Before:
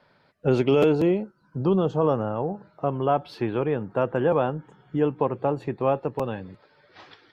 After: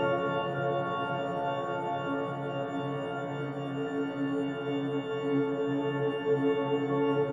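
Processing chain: frequency quantiser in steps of 4 st; frequency-shifting echo 0.196 s, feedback 64%, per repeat +62 Hz, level -19.5 dB; Paulstretch 16×, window 1.00 s, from 4.55; gain -3 dB

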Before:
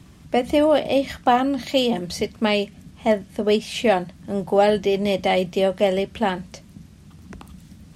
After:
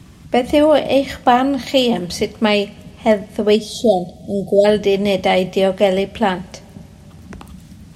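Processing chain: spectral delete 3.56–4.65, 760–3200 Hz; two-slope reverb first 0.56 s, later 5 s, from -20 dB, DRR 17.5 dB; gain +5 dB

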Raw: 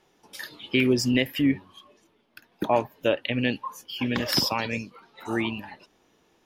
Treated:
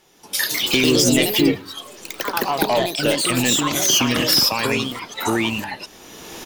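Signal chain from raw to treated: recorder AGC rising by 23 dB/s; high shelf 4200 Hz +12 dB; soft clip -14.5 dBFS, distortion -12 dB; echoes that change speed 0.214 s, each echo +3 st, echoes 3; on a send: feedback echo 0.105 s, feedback 43%, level -23.5 dB; on the sum: gain +4 dB

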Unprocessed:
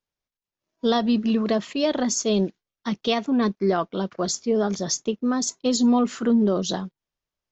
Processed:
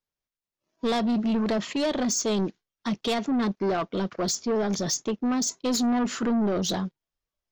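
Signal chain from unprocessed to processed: spectral noise reduction 7 dB; in parallel at -3 dB: limiter -21.5 dBFS, peak gain reduction 10.5 dB; on the sum: soft clip -20 dBFS, distortion -10 dB; gain -1 dB

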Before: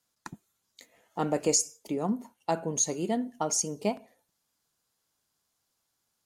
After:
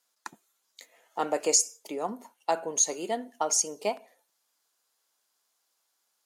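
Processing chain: HPF 480 Hz 12 dB/oct; gain +3 dB

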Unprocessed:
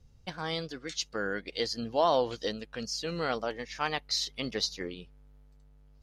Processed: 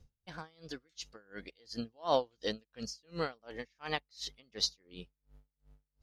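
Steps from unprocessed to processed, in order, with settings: dB-linear tremolo 2.8 Hz, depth 34 dB

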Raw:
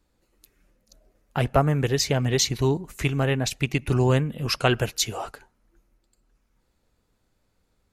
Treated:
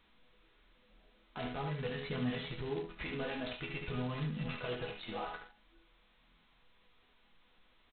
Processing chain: low-pass opened by the level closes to 1700 Hz, open at -22 dBFS; compressor 1.5:1, threshold -37 dBFS, peak gain reduction 8.5 dB; limiter -24.5 dBFS, peak gain reduction 10.5 dB; resonator bank E3 major, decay 0.29 s; flange 0.47 Hz, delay 0.6 ms, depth 3.6 ms, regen -31%; echo 72 ms -5.5 dB; gain +15 dB; G.726 16 kbps 8000 Hz

